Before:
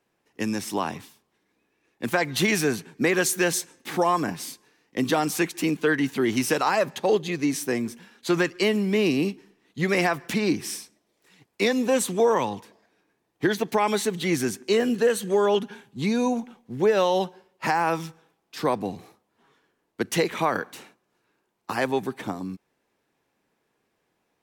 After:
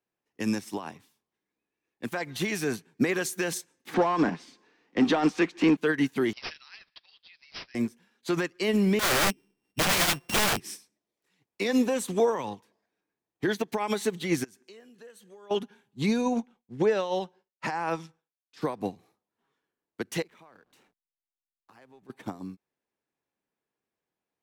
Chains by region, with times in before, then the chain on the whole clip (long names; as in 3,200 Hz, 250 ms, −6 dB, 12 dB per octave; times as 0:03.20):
0:03.94–0:05.77: high-pass filter 180 Hz 24 dB per octave + power curve on the samples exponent 0.7 + high-frequency loss of the air 140 metres
0:06.33–0:07.75: Bessel high-pass filter 2,900 Hz, order 4 + bad sample-rate conversion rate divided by 4×, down none, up filtered
0:08.99–0:10.60: samples sorted by size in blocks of 16 samples + low-shelf EQ 120 Hz +10 dB + wrap-around overflow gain 21.5 dB
0:14.44–0:15.51: downward compressor 4 to 1, threshold −34 dBFS + low-shelf EQ 490 Hz −5.5 dB
0:16.21–0:18.61: downward expander −52 dBFS + low-pass filter 8,100 Hz
0:20.22–0:22.10: downward compressor 2.5 to 1, threshold −43 dBFS + slack as between gear wheels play −49.5 dBFS
whole clip: brickwall limiter −20 dBFS; expander for the loud parts 2.5 to 1, over −38 dBFS; level +6.5 dB